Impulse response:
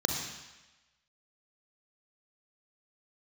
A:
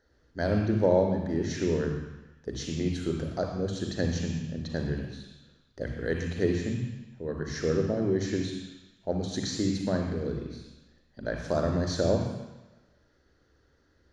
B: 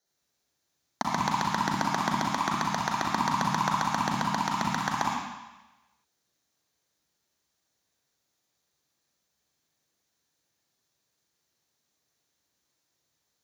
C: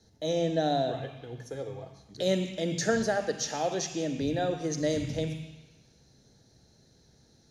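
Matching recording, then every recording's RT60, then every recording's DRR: A; 1.1, 1.1, 1.1 seconds; 2.5, −1.5, 8.5 decibels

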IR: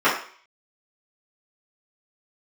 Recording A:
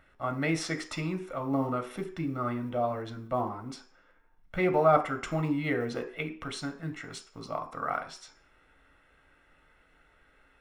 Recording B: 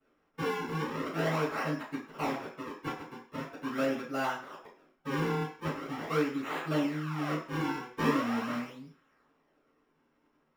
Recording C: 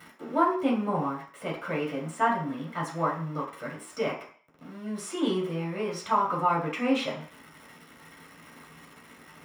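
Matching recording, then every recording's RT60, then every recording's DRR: B; 0.50, 0.50, 0.50 seconds; 5.0, −13.5, −4.0 decibels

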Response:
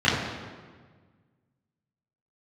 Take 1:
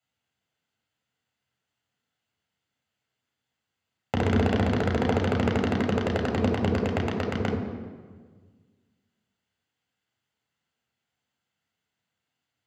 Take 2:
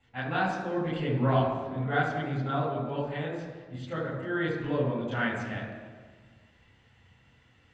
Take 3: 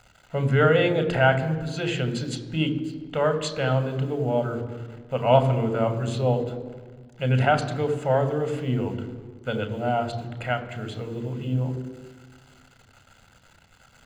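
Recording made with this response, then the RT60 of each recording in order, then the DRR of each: 2; 1.5, 1.5, 1.5 seconds; −0.5, −10.0, 8.0 decibels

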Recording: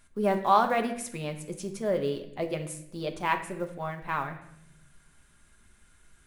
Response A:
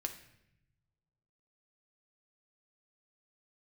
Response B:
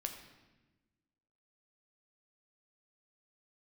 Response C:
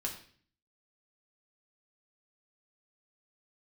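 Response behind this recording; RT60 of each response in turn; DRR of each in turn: A; 0.80, 1.2, 0.50 seconds; 5.0, 4.0, −1.5 decibels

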